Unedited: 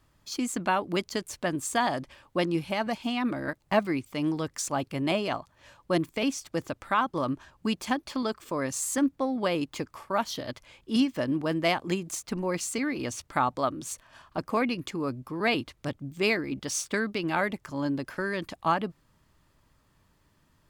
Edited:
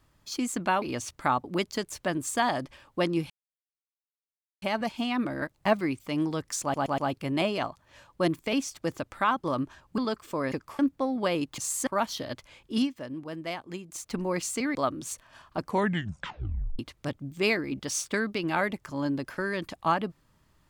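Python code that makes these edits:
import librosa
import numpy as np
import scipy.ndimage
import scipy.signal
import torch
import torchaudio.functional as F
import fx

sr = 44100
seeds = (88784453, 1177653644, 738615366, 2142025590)

y = fx.edit(x, sr, fx.insert_silence(at_s=2.68, length_s=1.32),
    fx.stutter(start_s=4.68, slice_s=0.12, count=4),
    fx.cut(start_s=7.68, length_s=0.48),
    fx.swap(start_s=8.7, length_s=0.29, other_s=9.78, other_length_s=0.27),
    fx.fade_down_up(start_s=10.92, length_s=1.36, db=-9.5, fade_s=0.21),
    fx.move(start_s=12.93, length_s=0.62, to_s=0.82),
    fx.tape_stop(start_s=14.42, length_s=1.17), tone=tone)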